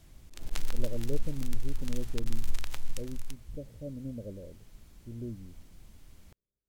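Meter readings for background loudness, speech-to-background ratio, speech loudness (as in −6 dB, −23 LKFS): −43.5 LKFS, 2.0 dB, −41.5 LKFS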